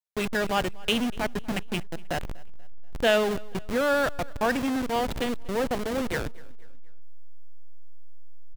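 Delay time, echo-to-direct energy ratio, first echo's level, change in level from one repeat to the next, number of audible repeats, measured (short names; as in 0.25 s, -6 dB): 0.242 s, -22.0 dB, -23.0 dB, -7.0 dB, 2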